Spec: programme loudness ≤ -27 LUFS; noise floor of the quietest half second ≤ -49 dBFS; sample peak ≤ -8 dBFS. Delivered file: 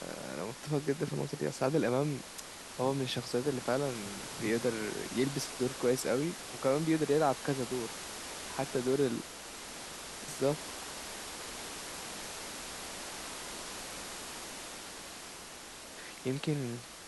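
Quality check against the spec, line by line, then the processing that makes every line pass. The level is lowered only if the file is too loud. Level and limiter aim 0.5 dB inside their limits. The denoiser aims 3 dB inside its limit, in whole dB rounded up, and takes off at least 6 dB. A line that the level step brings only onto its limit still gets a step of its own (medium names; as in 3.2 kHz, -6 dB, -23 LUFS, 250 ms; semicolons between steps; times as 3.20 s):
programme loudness -35.5 LUFS: pass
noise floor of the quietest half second -48 dBFS: fail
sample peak -17.0 dBFS: pass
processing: noise reduction 6 dB, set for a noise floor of -48 dBFS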